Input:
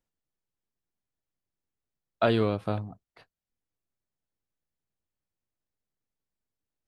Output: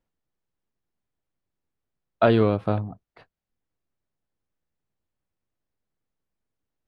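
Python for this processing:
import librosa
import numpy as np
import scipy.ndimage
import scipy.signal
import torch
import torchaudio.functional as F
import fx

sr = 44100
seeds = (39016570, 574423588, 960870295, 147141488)

y = fx.lowpass(x, sr, hz=2000.0, slope=6)
y = y * 10.0 ** (6.0 / 20.0)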